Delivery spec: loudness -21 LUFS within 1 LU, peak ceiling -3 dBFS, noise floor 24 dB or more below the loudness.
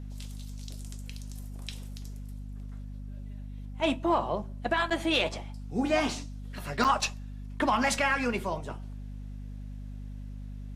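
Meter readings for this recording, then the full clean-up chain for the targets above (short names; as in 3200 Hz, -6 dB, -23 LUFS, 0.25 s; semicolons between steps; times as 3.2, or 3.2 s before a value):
dropouts 2; longest dropout 7.2 ms; hum 50 Hz; harmonics up to 250 Hz; hum level -37 dBFS; loudness -29.5 LUFS; peak -13.5 dBFS; loudness target -21.0 LUFS
-> interpolate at 4.9/6.84, 7.2 ms; notches 50/100/150/200/250 Hz; gain +8.5 dB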